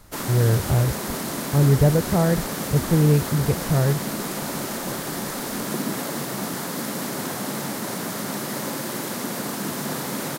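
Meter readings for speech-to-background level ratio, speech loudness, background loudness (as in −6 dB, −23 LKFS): 6.5 dB, −21.5 LKFS, −28.0 LKFS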